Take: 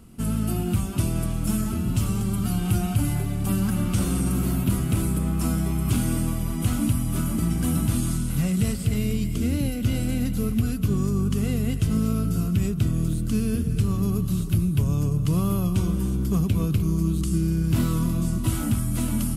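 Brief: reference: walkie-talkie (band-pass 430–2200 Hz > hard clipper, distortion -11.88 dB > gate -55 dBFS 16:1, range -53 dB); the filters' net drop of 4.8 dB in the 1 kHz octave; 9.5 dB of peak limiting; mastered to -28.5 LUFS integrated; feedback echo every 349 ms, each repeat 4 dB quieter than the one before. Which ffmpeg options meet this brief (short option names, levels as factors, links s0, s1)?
-af "equalizer=f=1000:t=o:g=-6,alimiter=limit=0.0891:level=0:latency=1,highpass=430,lowpass=2200,aecho=1:1:349|698|1047|1396|1745|2094|2443|2792|3141:0.631|0.398|0.25|0.158|0.0994|0.0626|0.0394|0.0249|0.0157,asoftclip=type=hard:threshold=0.0126,agate=range=0.00224:threshold=0.00178:ratio=16,volume=5.01"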